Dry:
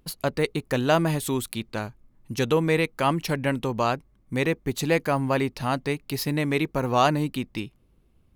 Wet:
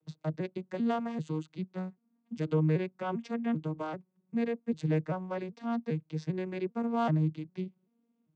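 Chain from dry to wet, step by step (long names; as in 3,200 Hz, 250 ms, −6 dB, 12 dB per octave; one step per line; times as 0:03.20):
vocoder with an arpeggio as carrier minor triad, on D#3, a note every 393 ms
level −6.5 dB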